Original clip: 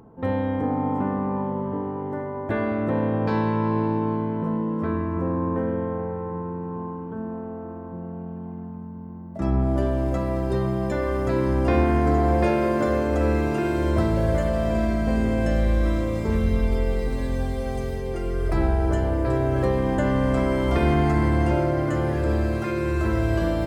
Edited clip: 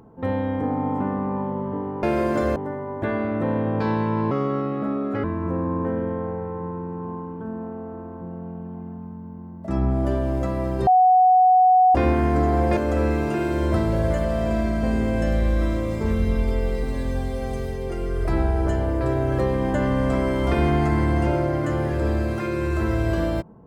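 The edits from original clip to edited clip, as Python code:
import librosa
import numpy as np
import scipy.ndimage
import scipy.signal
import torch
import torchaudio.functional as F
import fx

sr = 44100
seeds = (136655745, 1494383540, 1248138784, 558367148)

y = fx.edit(x, sr, fx.speed_span(start_s=3.78, length_s=1.17, speed=1.26),
    fx.bleep(start_s=10.58, length_s=1.08, hz=740.0, db=-11.5),
    fx.move(start_s=12.48, length_s=0.53, to_s=2.03), tone=tone)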